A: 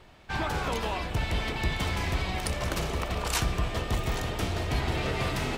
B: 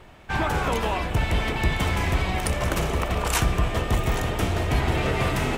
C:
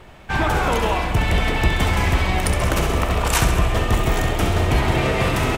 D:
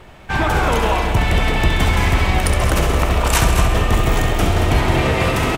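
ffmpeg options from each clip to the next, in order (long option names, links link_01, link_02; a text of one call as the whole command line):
ffmpeg -i in.wav -af "equalizer=frequency=4500:width_type=o:width=0.84:gain=-6.5,volume=6dB" out.wav
ffmpeg -i in.wav -af "aecho=1:1:67|134|201|268|335|402|469:0.398|0.231|0.134|0.0777|0.0451|0.0261|0.0152,volume=4dB" out.wav
ffmpeg -i in.wav -af "aecho=1:1:226:0.376,volume=2dB" out.wav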